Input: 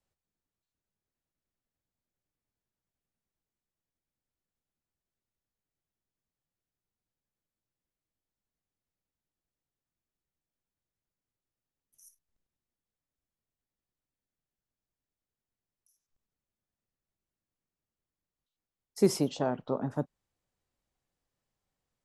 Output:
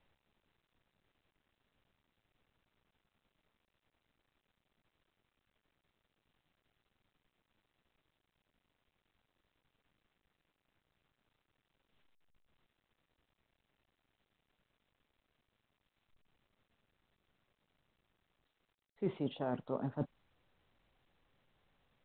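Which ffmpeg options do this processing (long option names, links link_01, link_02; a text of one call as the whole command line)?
ffmpeg -i in.wav -af "areverse,acompressor=threshold=-40dB:ratio=5,areverse,volume=5dB" -ar 8000 -c:a pcm_mulaw out.wav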